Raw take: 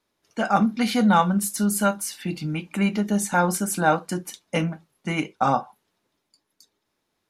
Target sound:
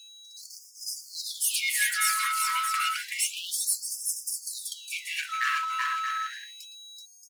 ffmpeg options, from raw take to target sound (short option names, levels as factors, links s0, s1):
-filter_complex "[0:a]afftfilt=real='real(if(lt(b,1008),b+24*(1-2*mod(floor(b/24),2)),b),0)':imag='imag(if(lt(b,1008),b+24*(1-2*mod(floor(b/24),2)),b),0)':win_size=2048:overlap=0.75,asplit=2[s0][s1];[s1]acompressor=threshold=0.0282:ratio=16,volume=0.708[s2];[s0][s2]amix=inputs=2:normalize=0,highpass=f=530:t=q:w=4.9,aphaser=in_gain=1:out_gain=1:delay=1:decay=0.56:speed=0.56:type=triangular,aeval=exprs='val(0)+0.0316*sin(2*PI*1300*n/s)':c=same,aeval=exprs='sgn(val(0))*max(abs(val(0))-0.0112,0)':c=same,aeval=exprs='(tanh(6.31*val(0)+0.3)-tanh(0.3))/6.31':c=same,aecho=1:1:380|627|787.6|891.9|959.7:0.631|0.398|0.251|0.158|0.1,afftfilt=real='re*gte(b*sr/1024,950*pow(4900/950,0.5+0.5*sin(2*PI*0.3*pts/sr)))':imag='im*gte(b*sr/1024,950*pow(4900/950,0.5+0.5*sin(2*PI*0.3*pts/sr)))':win_size=1024:overlap=0.75,volume=1.19"